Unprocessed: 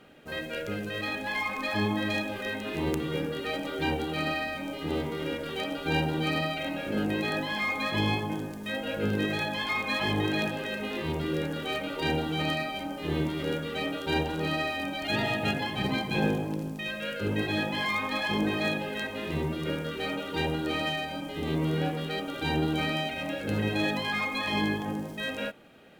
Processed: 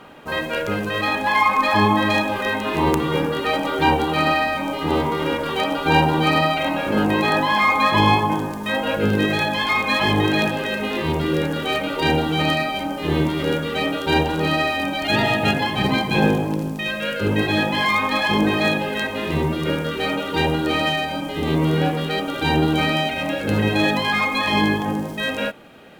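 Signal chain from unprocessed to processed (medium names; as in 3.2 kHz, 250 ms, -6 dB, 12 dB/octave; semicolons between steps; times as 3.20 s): peaking EQ 1 kHz +12.5 dB 0.61 oct, from 8.96 s +3.5 dB; trim +9 dB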